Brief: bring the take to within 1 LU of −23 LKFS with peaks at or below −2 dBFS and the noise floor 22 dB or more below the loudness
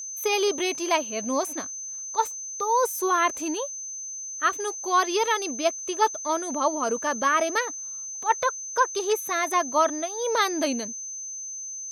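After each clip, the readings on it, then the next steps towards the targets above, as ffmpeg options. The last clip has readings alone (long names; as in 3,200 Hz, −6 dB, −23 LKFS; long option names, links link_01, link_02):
interfering tone 6,200 Hz; level of the tone −33 dBFS; integrated loudness −25.5 LKFS; sample peak −9.0 dBFS; target loudness −23.0 LKFS
→ -af "bandreject=frequency=6200:width=30"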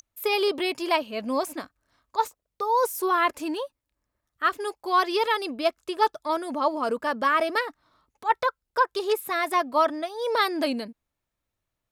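interfering tone none found; integrated loudness −26.0 LKFS; sample peak −8.5 dBFS; target loudness −23.0 LKFS
→ -af "volume=3dB"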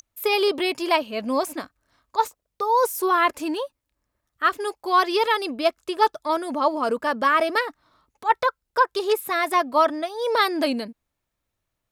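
integrated loudness −23.0 LKFS; sample peak −5.5 dBFS; background noise floor −81 dBFS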